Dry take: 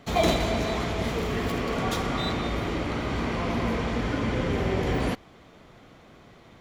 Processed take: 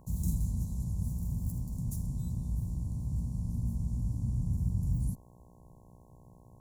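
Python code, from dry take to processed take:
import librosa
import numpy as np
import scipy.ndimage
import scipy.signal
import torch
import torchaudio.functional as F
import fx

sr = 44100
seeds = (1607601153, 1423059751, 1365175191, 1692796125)

y = scipy.signal.sosfilt(scipy.signal.cheby2(4, 70, [580.0, 2600.0], 'bandstop', fs=sr, output='sos'), x)
y = fx.dmg_buzz(y, sr, base_hz=60.0, harmonics=18, level_db=-60.0, tilt_db=-3, odd_only=False)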